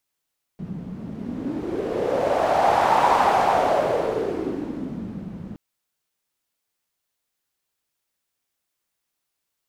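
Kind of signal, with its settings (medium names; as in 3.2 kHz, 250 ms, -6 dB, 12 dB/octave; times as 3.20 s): wind-like swept noise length 4.97 s, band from 180 Hz, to 850 Hz, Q 3.9, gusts 1, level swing 16.5 dB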